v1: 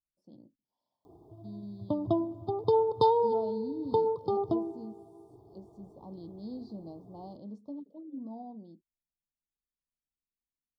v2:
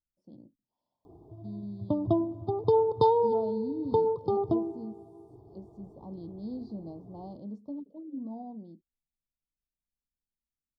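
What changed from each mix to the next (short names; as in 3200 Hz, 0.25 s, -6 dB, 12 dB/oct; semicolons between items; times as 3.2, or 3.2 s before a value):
master: add tilt -1.5 dB/oct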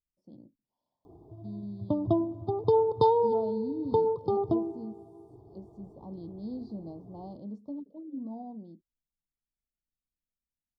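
none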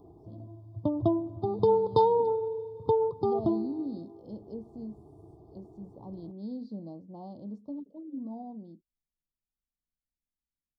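background: entry -1.05 s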